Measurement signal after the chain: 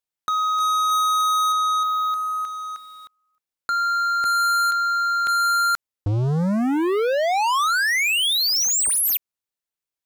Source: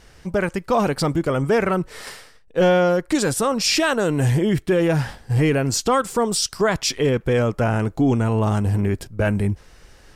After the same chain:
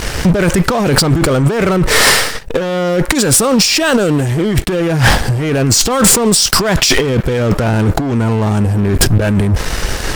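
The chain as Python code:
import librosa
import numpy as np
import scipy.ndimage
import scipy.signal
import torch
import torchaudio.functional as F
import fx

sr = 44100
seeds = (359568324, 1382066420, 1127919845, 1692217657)

y = fx.dynamic_eq(x, sr, hz=1100.0, q=1.1, threshold_db=-27.0, ratio=4.0, max_db=-4)
y = fx.over_compress(y, sr, threshold_db=-31.0, ratio=-1.0)
y = fx.leveller(y, sr, passes=5)
y = y * librosa.db_to_amplitude(2.0)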